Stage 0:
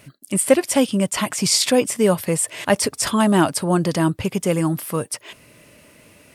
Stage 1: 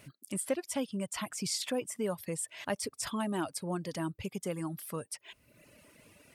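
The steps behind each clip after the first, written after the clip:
reverb reduction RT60 0.95 s
downward compressor 1.5 to 1, threshold −39 dBFS, peak gain reduction 11 dB
level −7.5 dB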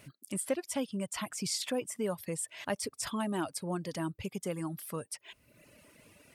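no processing that can be heard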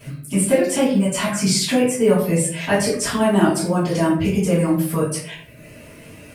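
log-companded quantiser 8 bits
convolution reverb RT60 0.60 s, pre-delay 3 ms, DRR −14 dB

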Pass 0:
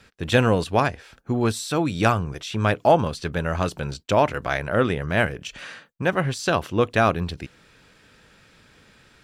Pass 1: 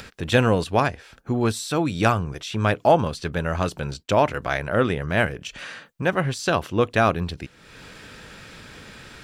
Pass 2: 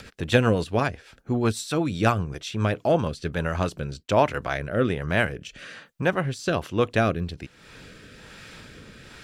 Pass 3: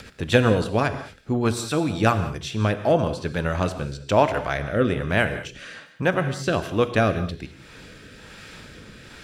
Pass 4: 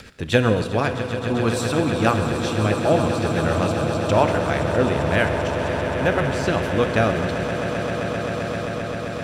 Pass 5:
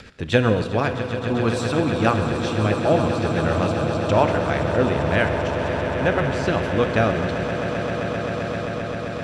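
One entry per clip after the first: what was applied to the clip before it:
upward compression, threshold −31 dBFS
rotating-speaker cabinet horn 8 Hz, later 1.2 Hz, at 0:02.38
reverb whose tail is shaped and stops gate 230 ms flat, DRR 9.5 dB; level +1.5 dB
echo that builds up and dies away 131 ms, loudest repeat 8, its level −12.5 dB
high-frequency loss of the air 56 metres

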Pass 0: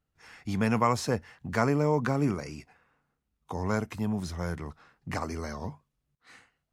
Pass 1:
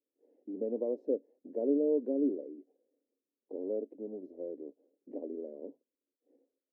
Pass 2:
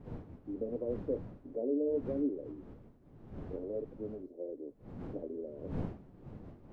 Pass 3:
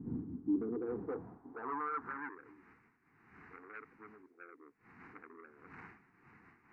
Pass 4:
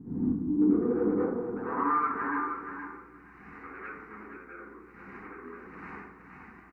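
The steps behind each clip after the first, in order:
elliptic band-pass filter 270–560 Hz, stop band 50 dB
wind on the microphone 250 Hz −45 dBFS; in parallel at −1.5 dB: downward compressor, threshold −37 dBFS, peak gain reduction 12.5 dB; on the sum: flanger 1.3 Hz, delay 6.6 ms, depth 5.3 ms, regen −51%; level −1.5 dB
soft clipping −37 dBFS, distortion −7 dB; band-pass filter sweep 260 Hz → 2,200 Hz, 0:00.40–0:02.50; phaser with its sweep stopped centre 1,400 Hz, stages 4; level +15.5 dB
mains hum 60 Hz, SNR 30 dB; repeating echo 472 ms, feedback 15%, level −7.5 dB; dense smooth reverb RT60 0.66 s, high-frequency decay 0.5×, pre-delay 75 ms, DRR −9 dB

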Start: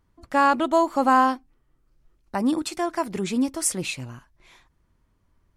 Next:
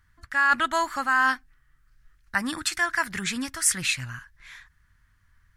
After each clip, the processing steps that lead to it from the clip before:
drawn EQ curve 100 Hz 0 dB, 420 Hz −19 dB, 940 Hz −7 dB, 1,700 Hz +13 dB, 2,400 Hz +2 dB
reversed playback
downward compressor 6 to 1, threshold −21 dBFS, peak gain reduction 9.5 dB
reversed playback
level +3.5 dB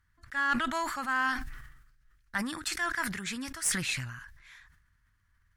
harmonic generator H 4 −23 dB, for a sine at −7.5 dBFS
level that may fall only so fast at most 53 dB per second
level −8 dB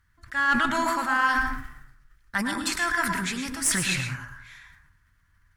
dense smooth reverb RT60 0.59 s, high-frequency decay 0.4×, pre-delay 95 ms, DRR 3.5 dB
level +5 dB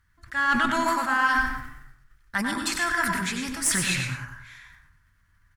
single-tap delay 94 ms −9 dB

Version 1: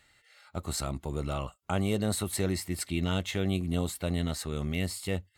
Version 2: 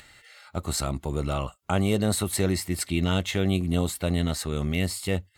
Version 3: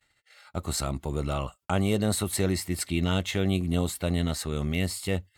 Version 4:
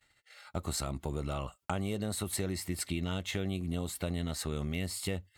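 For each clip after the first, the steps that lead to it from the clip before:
upward compression, threshold −50 dBFS; level +5 dB
noise gate −50 dBFS, range −38 dB; level −1.5 dB
downward compressor, threshold −31 dBFS, peak gain reduction 10.5 dB

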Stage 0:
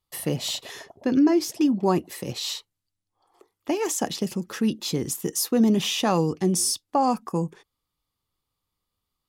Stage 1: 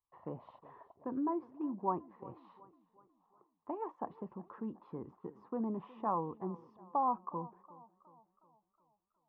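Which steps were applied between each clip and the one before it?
transistor ladder low-pass 1,100 Hz, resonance 75%
parametric band 150 Hz −2.5 dB
feedback echo with a swinging delay time 366 ms, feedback 48%, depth 55 cents, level −20 dB
level −5.5 dB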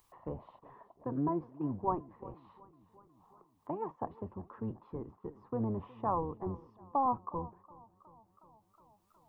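sub-octave generator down 1 octave, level −2 dB
dynamic equaliser 520 Hz, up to +3 dB, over −49 dBFS, Q 0.86
upward compression, threshold −53 dBFS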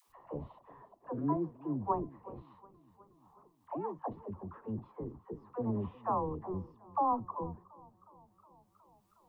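all-pass dispersion lows, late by 83 ms, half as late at 510 Hz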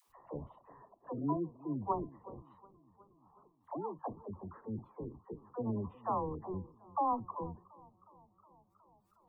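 gate on every frequency bin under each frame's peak −30 dB strong
level −2 dB

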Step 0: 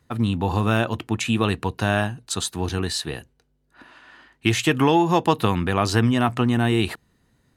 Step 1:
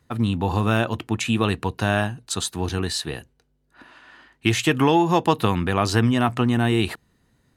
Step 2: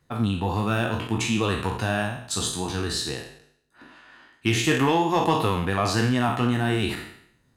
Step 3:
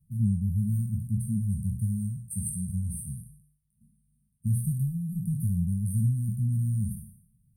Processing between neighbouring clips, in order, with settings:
no processing that can be heard
peak hold with a decay on every bin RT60 0.68 s; in parallel at −7 dB: hard clipping −12 dBFS, distortion −14 dB; on the sum: flanger 1.5 Hz, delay 5.1 ms, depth 5.7 ms, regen −49%; level −3 dB
linear-phase brick-wall band-stop 220–8,400 Hz; level +1.5 dB

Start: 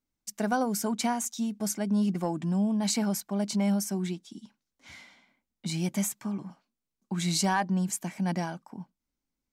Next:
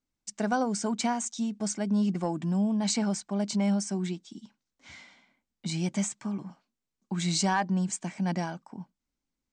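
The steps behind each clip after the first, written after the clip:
Butterworth low-pass 8,700 Hz 72 dB per octave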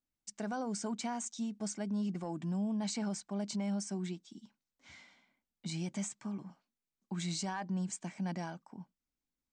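brickwall limiter −22.5 dBFS, peak gain reduction 6 dB
level −7 dB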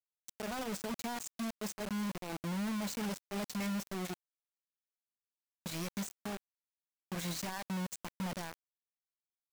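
bit reduction 6 bits
level −3.5 dB

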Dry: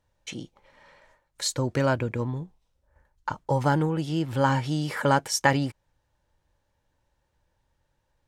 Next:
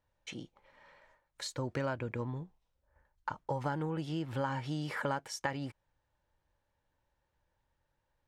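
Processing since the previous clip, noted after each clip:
tilt shelving filter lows −3 dB, about 720 Hz
downward compressor 4 to 1, threshold −26 dBFS, peak gain reduction 10.5 dB
high-shelf EQ 3,800 Hz −11 dB
level −5 dB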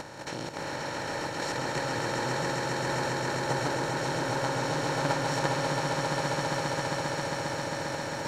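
compressor on every frequency bin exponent 0.2
output level in coarse steps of 9 dB
echo that builds up and dies away 134 ms, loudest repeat 8, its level −6 dB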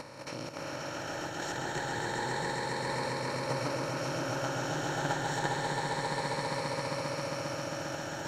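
rippled gain that drifts along the octave scale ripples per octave 0.94, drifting +0.29 Hz, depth 7 dB
level −4.5 dB

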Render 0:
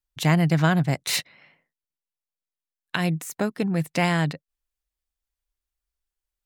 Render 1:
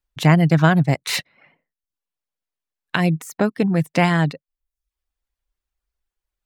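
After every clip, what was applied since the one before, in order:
reverb reduction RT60 0.53 s
high-shelf EQ 3,800 Hz −8.5 dB
level +6.5 dB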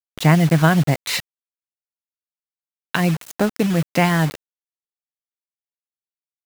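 bit reduction 5 bits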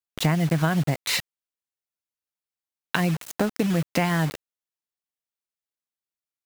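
downward compressor 4 to 1, threshold −20 dBFS, peak gain reduction 9.5 dB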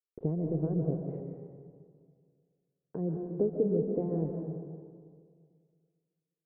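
transistor ladder low-pass 470 Hz, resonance 70%
comb and all-pass reverb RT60 2 s, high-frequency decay 0.45×, pre-delay 100 ms, DRR 3 dB

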